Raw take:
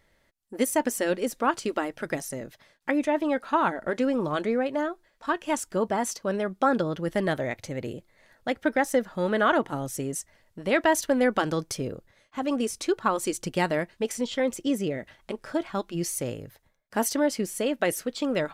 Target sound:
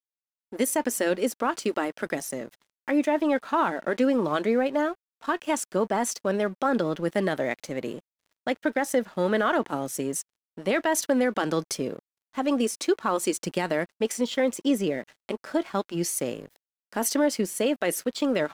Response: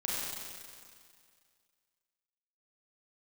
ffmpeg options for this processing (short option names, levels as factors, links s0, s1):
-af "highpass=f=170:w=0.5412,highpass=f=170:w=1.3066,alimiter=limit=0.15:level=0:latency=1:release=44,aeval=exprs='sgn(val(0))*max(abs(val(0))-0.00251,0)':c=same,volume=1.41"